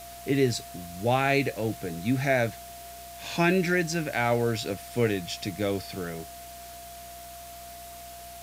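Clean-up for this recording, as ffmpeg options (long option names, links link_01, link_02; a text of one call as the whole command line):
ffmpeg -i in.wav -af "bandreject=frequency=61.9:width_type=h:width=4,bandreject=frequency=123.8:width_type=h:width=4,bandreject=frequency=185.7:width_type=h:width=4,bandreject=frequency=247.6:width_type=h:width=4,bandreject=frequency=309.5:width_type=h:width=4,bandreject=frequency=690:width=30,afwtdn=0.005" out.wav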